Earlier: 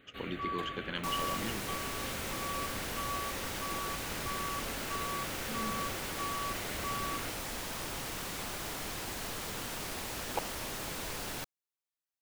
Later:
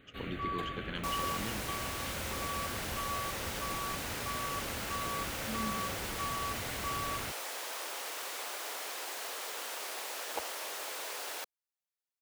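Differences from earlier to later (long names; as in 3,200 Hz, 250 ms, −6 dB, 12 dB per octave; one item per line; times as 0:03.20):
speech −3.5 dB
second sound: add high-pass filter 450 Hz 24 dB per octave
master: add low-shelf EQ 190 Hz +6.5 dB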